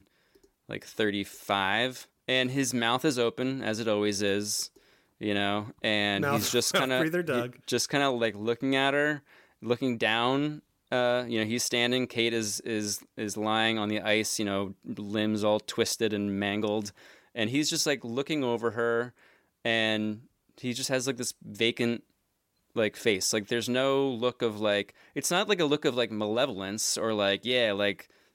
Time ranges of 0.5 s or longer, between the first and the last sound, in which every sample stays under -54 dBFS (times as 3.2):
22.1–22.75